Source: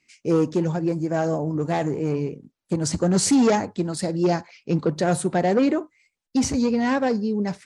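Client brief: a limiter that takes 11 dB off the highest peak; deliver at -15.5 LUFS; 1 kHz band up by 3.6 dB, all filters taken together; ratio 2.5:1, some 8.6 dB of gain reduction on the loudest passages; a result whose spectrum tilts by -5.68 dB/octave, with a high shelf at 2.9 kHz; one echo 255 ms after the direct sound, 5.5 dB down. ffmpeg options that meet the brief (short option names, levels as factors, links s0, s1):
-af "equalizer=f=1000:t=o:g=5.5,highshelf=f=2900:g=-3,acompressor=threshold=0.0447:ratio=2.5,alimiter=level_in=1.19:limit=0.0631:level=0:latency=1,volume=0.841,aecho=1:1:255:0.531,volume=7.94"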